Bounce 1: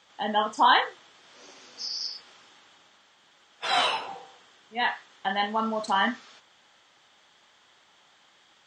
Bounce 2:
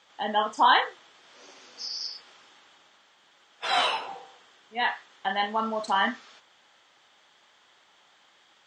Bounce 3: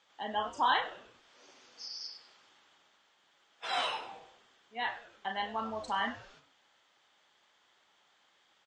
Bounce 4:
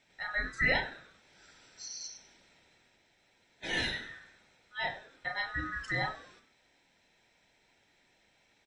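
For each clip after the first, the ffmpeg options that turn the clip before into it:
ffmpeg -i in.wav -af "bass=frequency=250:gain=-5,treble=frequency=4000:gain=-2" out.wav
ffmpeg -i in.wav -filter_complex "[0:a]asplit=5[link_01][link_02][link_03][link_04][link_05];[link_02]adelay=98,afreqshift=-130,volume=-16dB[link_06];[link_03]adelay=196,afreqshift=-260,volume=-23.5dB[link_07];[link_04]adelay=294,afreqshift=-390,volume=-31.1dB[link_08];[link_05]adelay=392,afreqshift=-520,volume=-38.6dB[link_09];[link_01][link_06][link_07][link_08][link_09]amix=inputs=5:normalize=0,volume=-8.5dB" out.wav
ffmpeg -i in.wav -af "afftfilt=real='real(if(lt(b,960),b+48*(1-2*mod(floor(b/48),2)),b),0)':imag='imag(if(lt(b,960),b+48*(1-2*mod(floor(b/48),2)),b),0)':win_size=2048:overlap=0.75" out.wav

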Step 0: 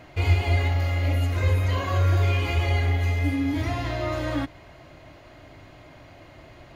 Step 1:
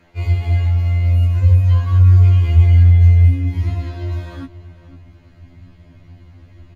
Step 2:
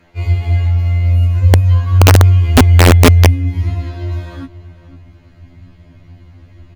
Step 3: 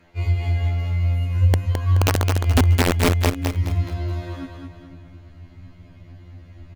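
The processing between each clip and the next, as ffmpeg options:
ffmpeg -i in.wav -filter_complex "[0:a]asubboost=boost=7.5:cutoff=210,asplit=2[link_01][link_02];[link_02]adelay=507.3,volume=-15dB,highshelf=frequency=4000:gain=-11.4[link_03];[link_01][link_03]amix=inputs=2:normalize=0,afftfilt=real='re*2*eq(mod(b,4),0)':imag='im*2*eq(mod(b,4),0)':win_size=2048:overlap=0.75,volume=-3.5dB" out.wav
ffmpeg -i in.wav -af "aeval=exprs='(mod(1.58*val(0)+1,2)-1)/1.58':channel_layout=same,volume=2.5dB" out.wav
ffmpeg -i in.wav -af "acompressor=threshold=-10dB:ratio=6,aecho=1:1:213|426|639|852|1065:0.562|0.214|0.0812|0.0309|0.0117,volume=-4.5dB" out.wav

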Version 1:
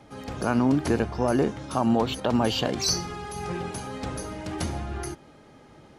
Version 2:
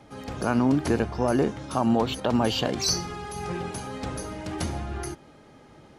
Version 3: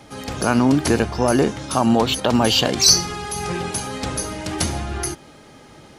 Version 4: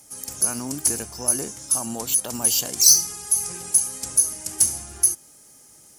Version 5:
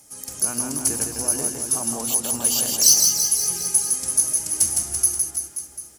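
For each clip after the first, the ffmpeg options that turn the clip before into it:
ffmpeg -i in.wav -af anull out.wav
ffmpeg -i in.wav -af "highshelf=frequency=2600:gain=9,volume=5.5dB" out.wav
ffmpeg -i in.wav -af "aexciter=amount=5.5:drive=8.3:freq=5500,aemphasis=mode=production:type=cd,volume=-15.5dB" out.wav
ffmpeg -i in.wav -af "aecho=1:1:160|336|529.6|742.6|976.8:0.631|0.398|0.251|0.158|0.1,volume=-1dB" out.wav

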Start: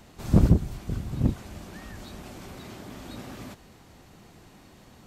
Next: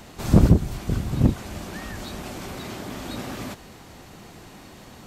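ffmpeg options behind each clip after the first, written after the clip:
ffmpeg -i in.wav -filter_complex "[0:a]lowshelf=frequency=240:gain=-3.5,asplit=2[link_01][link_02];[link_02]alimiter=limit=-17dB:level=0:latency=1:release=292,volume=-1.5dB[link_03];[link_01][link_03]amix=inputs=2:normalize=0,volume=3.5dB" out.wav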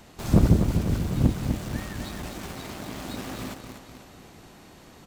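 ffmpeg -i in.wav -filter_complex "[0:a]aecho=1:1:249|498|747|996|1245|1494|1743:0.473|0.27|0.154|0.0876|0.0499|0.0285|0.0162,asplit=2[link_01][link_02];[link_02]acrusher=bits=4:mix=0:aa=0.000001,volume=-8.5dB[link_03];[link_01][link_03]amix=inputs=2:normalize=0,volume=-6dB" out.wav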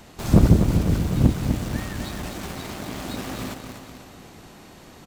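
ffmpeg -i in.wav -af "aecho=1:1:367:0.158,volume=3.5dB" out.wav

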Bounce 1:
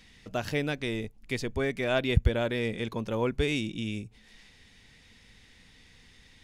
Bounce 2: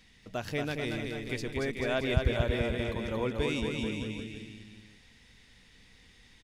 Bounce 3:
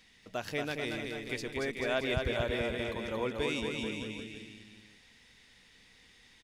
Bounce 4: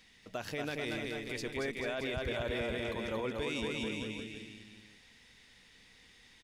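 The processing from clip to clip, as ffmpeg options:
ffmpeg -i in.wav -af "aecho=1:1:230|437|623.3|791|941.9:0.631|0.398|0.251|0.158|0.1,volume=-4dB" out.wav
ffmpeg -i in.wav -af "lowshelf=frequency=200:gain=-10" out.wav
ffmpeg -i in.wav -af "alimiter=level_in=3dB:limit=-24dB:level=0:latency=1:release=14,volume=-3dB" out.wav

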